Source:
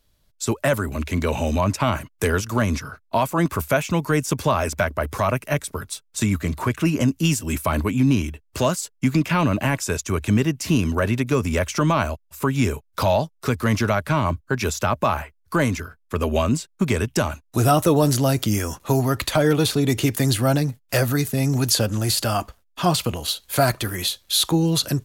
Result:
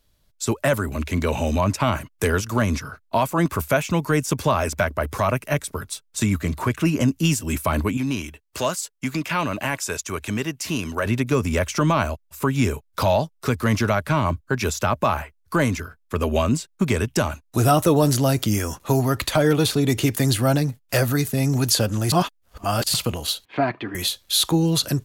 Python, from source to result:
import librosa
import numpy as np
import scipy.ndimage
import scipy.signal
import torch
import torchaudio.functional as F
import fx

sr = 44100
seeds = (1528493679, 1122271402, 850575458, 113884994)

y = fx.low_shelf(x, sr, hz=350.0, db=-10.5, at=(7.97, 11.06))
y = fx.cabinet(y, sr, low_hz=210.0, low_slope=12, high_hz=2700.0, hz=(290.0, 540.0, 1400.0), db=(5, -9, -8), at=(23.45, 23.95))
y = fx.edit(y, sr, fx.reverse_span(start_s=22.12, length_s=0.82), tone=tone)